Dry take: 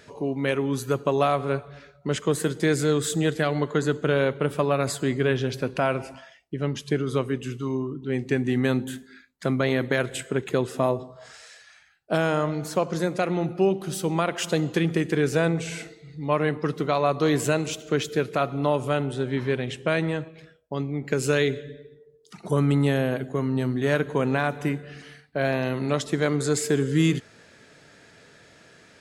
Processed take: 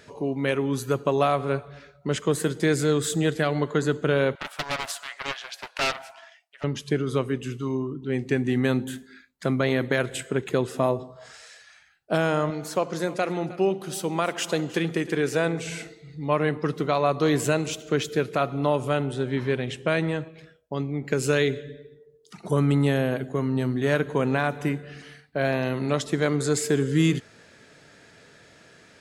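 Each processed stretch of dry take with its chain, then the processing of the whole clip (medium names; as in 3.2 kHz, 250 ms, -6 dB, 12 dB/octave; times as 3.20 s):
4.35–6.64 s: elliptic high-pass 680 Hz, stop band 50 dB + loudspeaker Doppler distortion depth 0.99 ms
12.50–15.67 s: bass shelf 150 Hz -11 dB + delay 311 ms -18 dB
whole clip: none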